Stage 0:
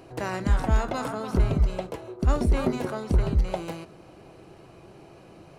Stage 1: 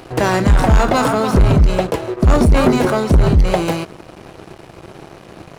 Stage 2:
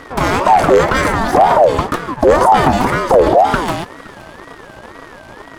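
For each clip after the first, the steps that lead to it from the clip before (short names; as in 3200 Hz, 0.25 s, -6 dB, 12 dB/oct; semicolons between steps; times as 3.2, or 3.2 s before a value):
sample leveller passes 3; gain +5 dB
whine 1100 Hz -38 dBFS; thinning echo 0.517 s, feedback 61%, high-pass 760 Hz, level -20 dB; ring modulator with a swept carrier 640 Hz, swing 30%, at 2 Hz; gain +3.5 dB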